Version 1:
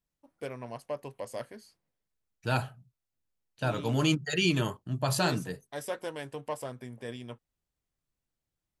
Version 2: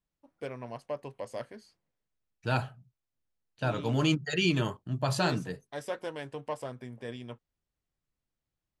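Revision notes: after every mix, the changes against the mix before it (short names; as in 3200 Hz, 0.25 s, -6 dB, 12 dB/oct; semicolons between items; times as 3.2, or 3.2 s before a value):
master: add air absorption 53 m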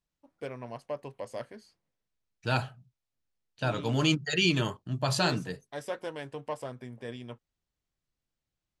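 second voice: add bell 4900 Hz +5 dB 2.2 oct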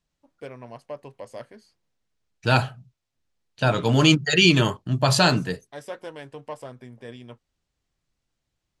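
second voice +9.0 dB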